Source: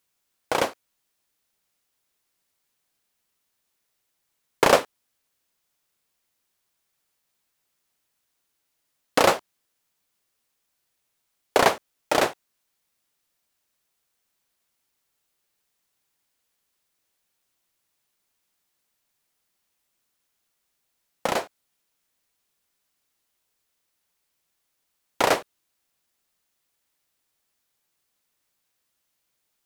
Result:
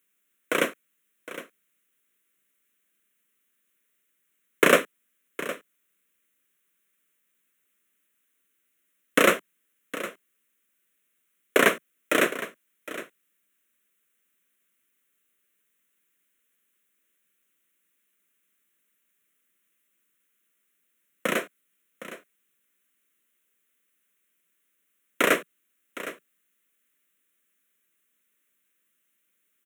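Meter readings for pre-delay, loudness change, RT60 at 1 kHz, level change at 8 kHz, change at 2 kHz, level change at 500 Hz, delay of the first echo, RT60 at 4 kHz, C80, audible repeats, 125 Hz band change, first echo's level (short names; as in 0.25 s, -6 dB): none, -1.0 dB, none, -0.5 dB, +4.0 dB, -1.0 dB, 0.762 s, none, none, 1, -2.5 dB, -14.5 dB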